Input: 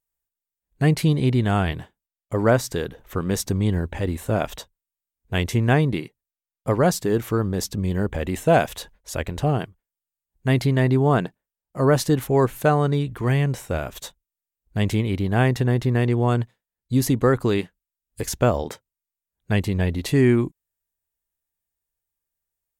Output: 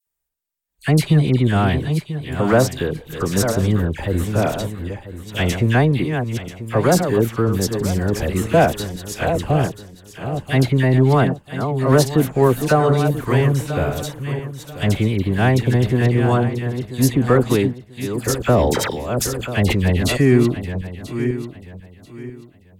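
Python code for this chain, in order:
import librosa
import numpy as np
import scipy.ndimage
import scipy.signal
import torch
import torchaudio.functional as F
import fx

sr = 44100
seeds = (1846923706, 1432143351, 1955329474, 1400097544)

p1 = fx.reverse_delay_fb(x, sr, ms=494, feedback_pct=50, wet_db=-8)
p2 = np.clip(p1, -10.0 ** (-16.5 / 20.0), 10.0 ** (-16.5 / 20.0))
p3 = p1 + (p2 * 10.0 ** (-8.0 / 20.0))
p4 = fx.dispersion(p3, sr, late='lows', ms=70.0, hz=1700.0)
p5 = fx.sustainer(p4, sr, db_per_s=31.0, at=(18.53, 20.16), fade=0.02)
y = p5 * 10.0 ** (1.0 / 20.0)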